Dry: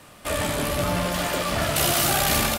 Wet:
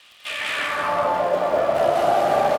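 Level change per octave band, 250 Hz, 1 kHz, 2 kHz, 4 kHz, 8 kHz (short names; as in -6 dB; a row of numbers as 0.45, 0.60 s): -5.5 dB, +6.5 dB, +0.5 dB, -6.0 dB, under -15 dB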